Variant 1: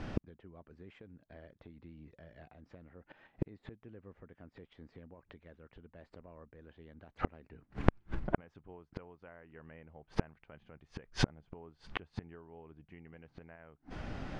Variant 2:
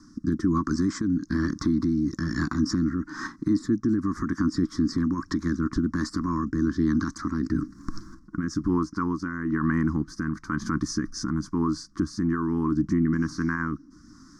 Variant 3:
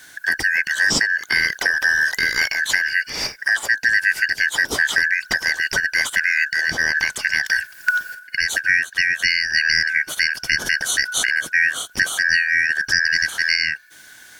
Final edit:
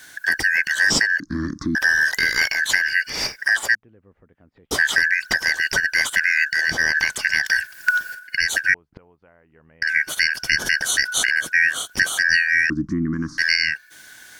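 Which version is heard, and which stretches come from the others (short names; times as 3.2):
3
1.2–1.75 from 2
3.75–4.71 from 1
8.74–9.82 from 1
12.7–13.38 from 2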